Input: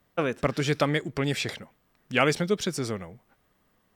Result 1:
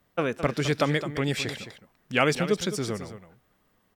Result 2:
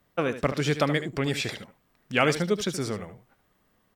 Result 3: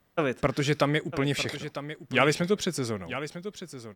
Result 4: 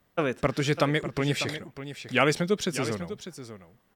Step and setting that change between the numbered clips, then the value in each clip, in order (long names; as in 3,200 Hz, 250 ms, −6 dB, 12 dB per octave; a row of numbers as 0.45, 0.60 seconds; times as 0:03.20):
single-tap delay, delay time: 213, 75, 950, 598 milliseconds